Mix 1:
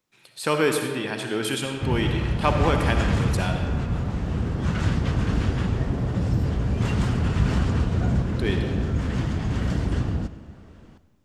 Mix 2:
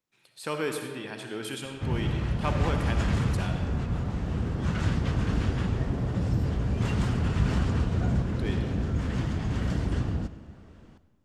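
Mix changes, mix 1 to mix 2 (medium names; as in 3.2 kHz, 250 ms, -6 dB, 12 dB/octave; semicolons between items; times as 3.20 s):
speech -9.0 dB; background -3.5 dB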